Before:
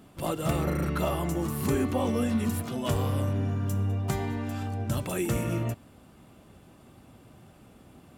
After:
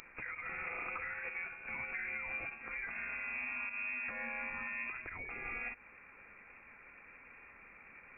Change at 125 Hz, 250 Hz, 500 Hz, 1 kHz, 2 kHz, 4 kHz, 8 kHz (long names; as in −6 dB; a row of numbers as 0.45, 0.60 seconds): −34.0 dB, −28.0 dB, −22.0 dB, −11.5 dB, +5.0 dB, below −25 dB, below −35 dB